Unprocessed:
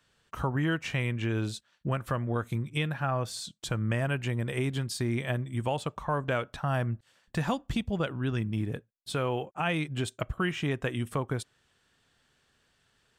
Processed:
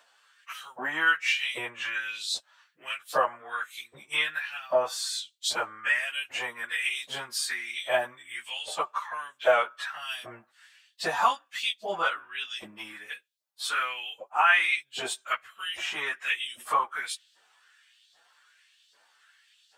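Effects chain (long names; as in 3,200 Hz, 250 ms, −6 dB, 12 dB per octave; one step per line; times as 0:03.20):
auto-filter high-pass saw up 1.9 Hz 620–4,500 Hz
time stretch by phase vocoder 1.5×
level +8 dB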